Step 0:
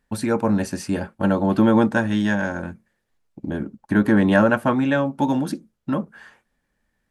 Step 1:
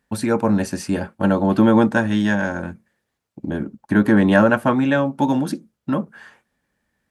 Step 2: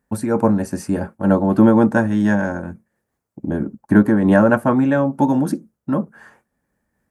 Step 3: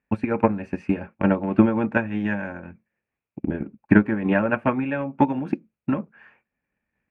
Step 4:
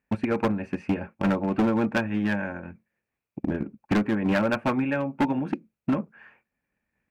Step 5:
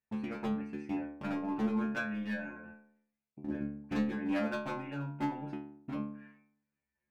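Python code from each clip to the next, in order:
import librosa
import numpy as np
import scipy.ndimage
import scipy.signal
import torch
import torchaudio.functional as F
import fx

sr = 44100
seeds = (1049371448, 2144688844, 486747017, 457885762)

y1 = scipy.signal.sosfilt(scipy.signal.butter(2, 63.0, 'highpass', fs=sr, output='sos'), x)
y1 = y1 * librosa.db_to_amplitude(2.0)
y2 = fx.peak_eq(y1, sr, hz=3400.0, db=-13.0, octaves=1.6)
y2 = fx.am_noise(y2, sr, seeds[0], hz=5.7, depth_pct=60)
y2 = y2 * librosa.db_to_amplitude(5.0)
y3 = fx.transient(y2, sr, attack_db=12, sustain_db=0)
y3 = fx.lowpass_res(y3, sr, hz=2500.0, q=7.9)
y3 = y3 * librosa.db_to_amplitude(-11.0)
y4 = np.clip(y3, -10.0 ** (-18.0 / 20.0), 10.0 ** (-18.0 / 20.0))
y5 = fx.stiff_resonator(y4, sr, f0_hz=71.0, decay_s=0.78, stiffness=0.002)
y5 = y5 * librosa.db_to_amplitude(1.5)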